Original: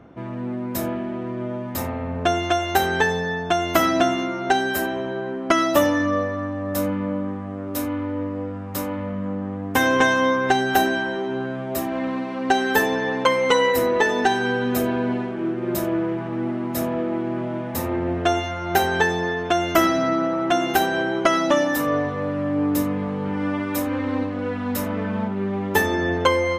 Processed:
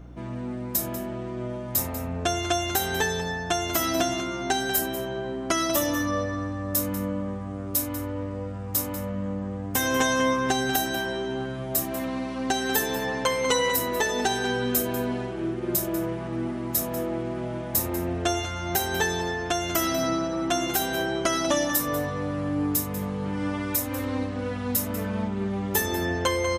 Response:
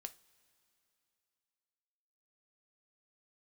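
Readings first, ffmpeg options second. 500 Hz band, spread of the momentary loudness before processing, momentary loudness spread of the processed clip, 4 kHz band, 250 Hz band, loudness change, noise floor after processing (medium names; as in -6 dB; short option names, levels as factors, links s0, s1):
-6.0 dB, 9 LU, 7 LU, -1.0 dB, -5.5 dB, -4.0 dB, -33 dBFS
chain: -filter_complex "[0:a]bass=f=250:g=3,treble=f=4000:g=15,alimiter=limit=0.473:level=0:latency=1:release=250,aeval=exprs='val(0)+0.0126*(sin(2*PI*60*n/s)+sin(2*PI*2*60*n/s)/2+sin(2*PI*3*60*n/s)/3+sin(2*PI*4*60*n/s)/4+sin(2*PI*5*60*n/s)/5)':c=same,asplit=2[s0][s1];[s1]adelay=192.4,volume=0.316,highshelf=f=4000:g=-4.33[s2];[s0][s2]amix=inputs=2:normalize=0,volume=0.562"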